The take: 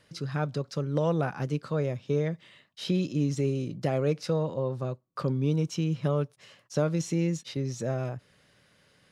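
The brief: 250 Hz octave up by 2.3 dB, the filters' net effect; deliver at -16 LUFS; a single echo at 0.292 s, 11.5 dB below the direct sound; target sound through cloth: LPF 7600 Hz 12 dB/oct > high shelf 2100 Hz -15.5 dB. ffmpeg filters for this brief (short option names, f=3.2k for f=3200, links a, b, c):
-af "lowpass=7.6k,equalizer=f=250:t=o:g=4,highshelf=f=2.1k:g=-15.5,aecho=1:1:292:0.266,volume=12.5dB"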